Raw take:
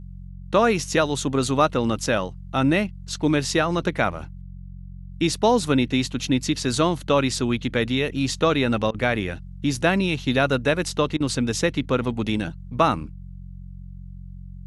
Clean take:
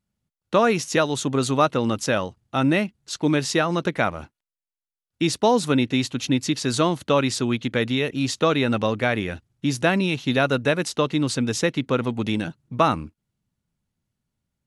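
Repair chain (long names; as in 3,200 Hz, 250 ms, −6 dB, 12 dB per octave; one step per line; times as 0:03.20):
hum removal 45.3 Hz, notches 4
repair the gap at 0:08.91/0:11.17, 32 ms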